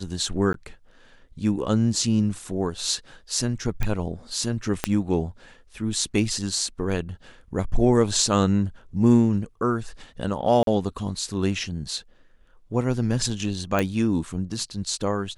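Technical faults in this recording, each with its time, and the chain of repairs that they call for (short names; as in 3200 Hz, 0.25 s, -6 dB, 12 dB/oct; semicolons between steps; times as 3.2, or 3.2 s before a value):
0.53–0.54 gap 12 ms
3.83 pop -12 dBFS
4.84 pop -6 dBFS
10.63–10.67 gap 42 ms
13.79 pop -10 dBFS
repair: de-click; interpolate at 0.53, 12 ms; interpolate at 10.63, 42 ms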